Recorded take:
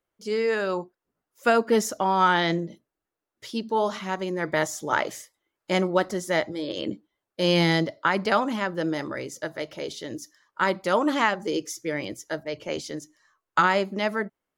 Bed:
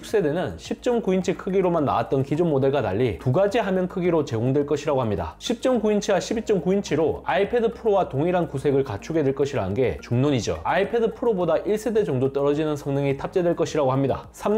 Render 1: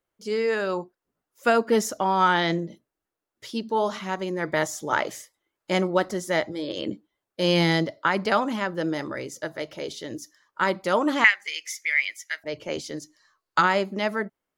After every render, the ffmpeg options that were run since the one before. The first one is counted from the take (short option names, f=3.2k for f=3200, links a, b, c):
-filter_complex "[0:a]asettb=1/sr,asplit=3[a][b][c];[a]atrim=end=11.244[d];[b]atrim=start=11.24:end=12.44,asetpts=PTS-STARTPTS,afade=t=in:d=0.004:c=qsin,afade=t=out:st=1.196:d=0.004:c=qsin,highpass=f=2.1k:t=q:w=6.6[e];[c]atrim=start=12.436[f];[d][e]acrossfade=d=0.004:c1=hsin:c2=qsin[g];[g][f]acrossfade=d=0.004:c1=qsin:c2=hsin,asettb=1/sr,asplit=3[h][i][j];[h]atrim=end=12.954[k];[i]atrim=start=12.95:end=13.61,asetpts=PTS-STARTPTS,afade=t=in:d=0.004:c=qsin,afade=t=out:st=0.656:d=0.004:c=qsin,equalizer=f=4.5k:t=o:w=0.39:g=10[l];[j]atrim=start=13.606[m];[k][l]acrossfade=d=0.004:c1=hsin:c2=qsin[n];[n][m]acrossfade=d=0.004:c1=qsin:c2=hsin"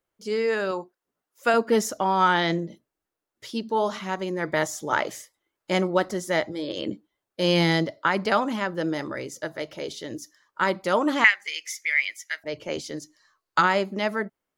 -filter_complex "[0:a]asettb=1/sr,asplit=3[a][b][c];[a]atrim=end=0.714[d];[b]atrim=start=0.71:end=1.54,asetpts=PTS-STARTPTS,afade=t=in:d=0.004:c=qsin,afade=t=out:st=0.826:d=0.004:c=qsin,lowshelf=f=190:g=-11[e];[c]atrim=start=1.536[f];[d][e]acrossfade=d=0.004:c1=hsin:c2=qsin[g];[g][f]acrossfade=d=0.004:c1=qsin:c2=hsin"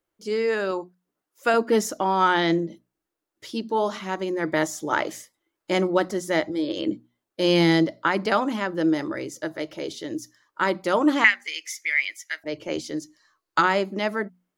-af "equalizer=f=320:w=4.5:g=7.5,bandreject=f=60:t=h:w=6,bandreject=f=120:t=h:w=6,bandreject=f=180:t=h:w=6,bandreject=f=240:t=h:w=6"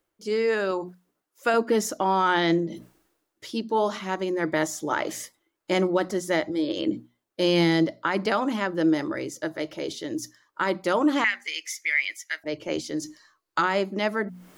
-af "alimiter=limit=-12.5dB:level=0:latency=1:release=83,areverse,acompressor=mode=upward:threshold=-30dB:ratio=2.5,areverse"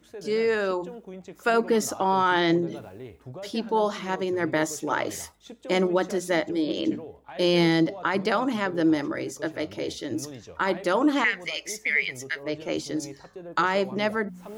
-filter_complex "[1:a]volume=-19.5dB[a];[0:a][a]amix=inputs=2:normalize=0"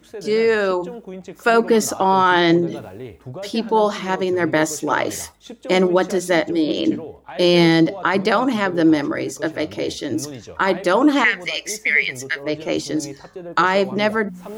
-af "volume=7dB"